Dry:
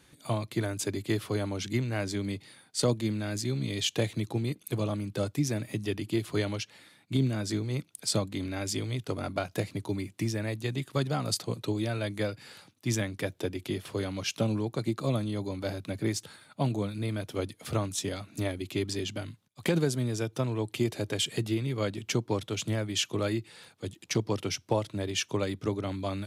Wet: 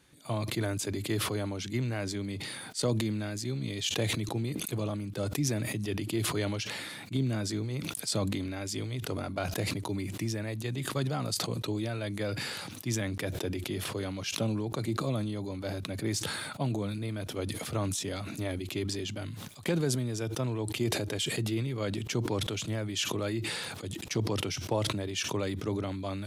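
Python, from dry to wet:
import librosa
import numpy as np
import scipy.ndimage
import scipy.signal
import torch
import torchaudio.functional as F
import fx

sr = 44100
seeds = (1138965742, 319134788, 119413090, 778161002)

y = fx.sustainer(x, sr, db_per_s=25.0)
y = y * 10.0 ** (-3.5 / 20.0)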